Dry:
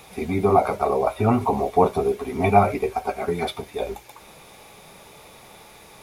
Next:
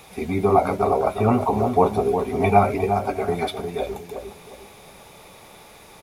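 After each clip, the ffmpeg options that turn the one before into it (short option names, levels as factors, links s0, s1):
-filter_complex "[0:a]asplit=2[s0][s1];[s1]adelay=356,lowpass=f=930:p=1,volume=0.531,asplit=2[s2][s3];[s3]adelay=356,lowpass=f=930:p=1,volume=0.35,asplit=2[s4][s5];[s5]adelay=356,lowpass=f=930:p=1,volume=0.35,asplit=2[s6][s7];[s7]adelay=356,lowpass=f=930:p=1,volume=0.35[s8];[s0][s2][s4][s6][s8]amix=inputs=5:normalize=0"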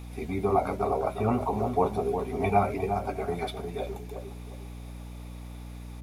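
-af "aeval=exprs='val(0)+0.0251*(sin(2*PI*60*n/s)+sin(2*PI*2*60*n/s)/2+sin(2*PI*3*60*n/s)/3+sin(2*PI*4*60*n/s)/4+sin(2*PI*5*60*n/s)/5)':c=same,volume=0.422"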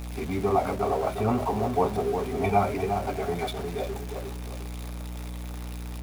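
-af "aeval=exprs='val(0)+0.5*0.0178*sgn(val(0))':c=same"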